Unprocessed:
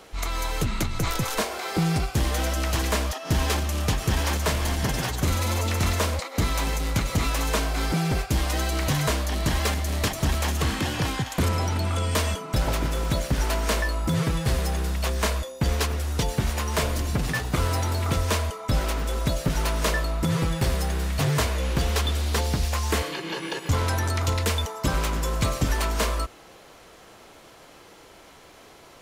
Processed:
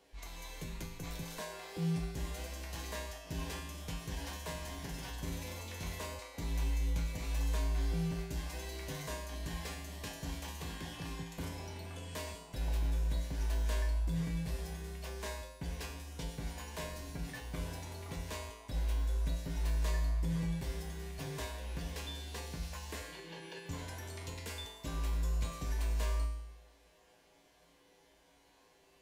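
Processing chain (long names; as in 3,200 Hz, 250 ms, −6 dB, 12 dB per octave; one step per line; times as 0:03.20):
notch filter 1,300 Hz, Q 5.9
tuned comb filter 56 Hz, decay 0.85 s, harmonics odd, mix 90%
level −3.5 dB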